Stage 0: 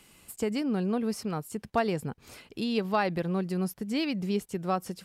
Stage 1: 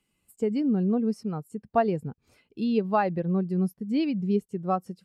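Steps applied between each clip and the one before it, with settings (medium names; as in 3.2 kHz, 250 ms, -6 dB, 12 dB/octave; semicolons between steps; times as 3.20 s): spectral contrast expander 1.5:1; trim +4 dB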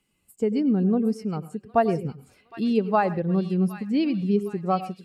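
feedback echo behind a high-pass 763 ms, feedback 47%, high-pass 2.1 kHz, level -7.5 dB; on a send at -15 dB: reverberation RT60 0.20 s, pre-delay 94 ms; on the sum: trim +2.5 dB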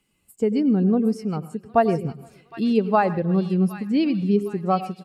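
feedback delay 155 ms, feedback 54%, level -24 dB; trim +2.5 dB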